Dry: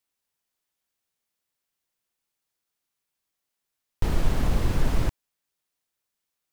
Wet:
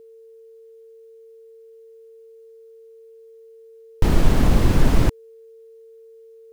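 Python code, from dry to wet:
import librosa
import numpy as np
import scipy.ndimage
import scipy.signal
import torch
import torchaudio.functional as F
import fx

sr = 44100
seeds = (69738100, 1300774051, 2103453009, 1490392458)

y = x + 10.0 ** (-52.0 / 20.0) * np.sin(2.0 * np.pi * 450.0 * np.arange(len(x)) / sr)
y = fx.peak_eq(y, sr, hz=260.0, db=4.0, octaves=1.6)
y = y * librosa.db_to_amplitude(6.5)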